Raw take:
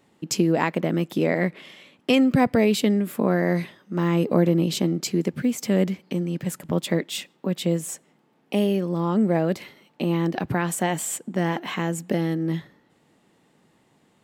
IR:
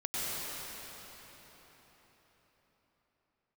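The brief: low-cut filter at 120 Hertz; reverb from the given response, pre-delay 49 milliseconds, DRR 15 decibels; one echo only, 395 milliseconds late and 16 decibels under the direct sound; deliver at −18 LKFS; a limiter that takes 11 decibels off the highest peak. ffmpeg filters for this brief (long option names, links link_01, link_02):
-filter_complex "[0:a]highpass=120,alimiter=limit=-17dB:level=0:latency=1,aecho=1:1:395:0.158,asplit=2[link_01][link_02];[1:a]atrim=start_sample=2205,adelay=49[link_03];[link_02][link_03]afir=irnorm=-1:irlink=0,volume=-22dB[link_04];[link_01][link_04]amix=inputs=2:normalize=0,volume=9.5dB"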